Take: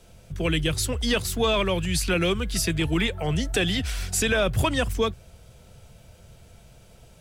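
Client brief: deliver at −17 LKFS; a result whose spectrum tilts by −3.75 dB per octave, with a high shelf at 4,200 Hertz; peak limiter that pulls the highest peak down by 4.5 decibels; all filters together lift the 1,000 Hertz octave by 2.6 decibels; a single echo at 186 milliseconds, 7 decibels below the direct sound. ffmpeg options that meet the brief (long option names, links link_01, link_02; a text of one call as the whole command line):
ffmpeg -i in.wav -af "equalizer=frequency=1000:width_type=o:gain=3,highshelf=frequency=4200:gain=3.5,alimiter=limit=-15.5dB:level=0:latency=1,aecho=1:1:186:0.447,volume=7.5dB" out.wav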